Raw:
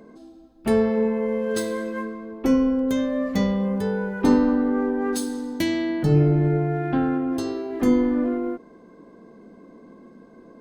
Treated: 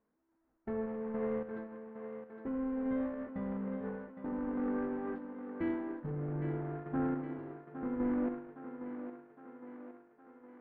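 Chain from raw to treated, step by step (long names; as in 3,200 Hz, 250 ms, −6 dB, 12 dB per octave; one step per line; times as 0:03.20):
converter with a step at zero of −23.5 dBFS
inverse Chebyshev low-pass filter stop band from 7,400 Hz, stop band 70 dB
noise gate −20 dBFS, range −39 dB
brickwall limiter −18.5 dBFS, peak gain reduction 12 dB
sample-and-hold tremolo
feedback echo with a high-pass in the loop 812 ms, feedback 62%, high-pass 230 Hz, level −8 dB
level −8 dB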